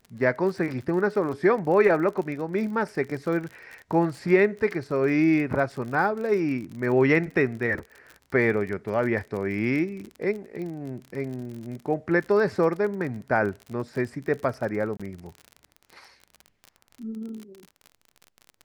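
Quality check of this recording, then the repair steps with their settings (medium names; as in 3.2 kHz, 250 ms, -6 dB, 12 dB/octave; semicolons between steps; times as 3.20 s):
crackle 42 per s -33 dBFS
14.97–15.00 s: dropout 26 ms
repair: de-click; interpolate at 14.97 s, 26 ms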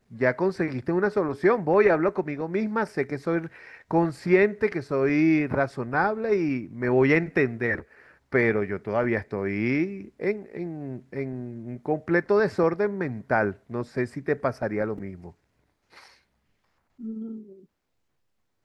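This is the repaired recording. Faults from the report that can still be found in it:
nothing left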